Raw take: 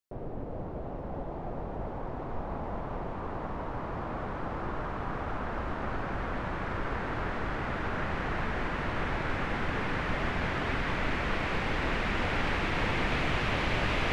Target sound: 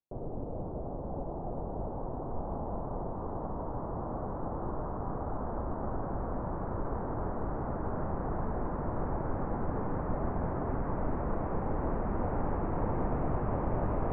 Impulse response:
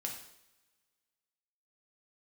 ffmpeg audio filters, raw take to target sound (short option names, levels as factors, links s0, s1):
-af "lowpass=f=1000:w=0.5412,lowpass=f=1000:w=1.3066"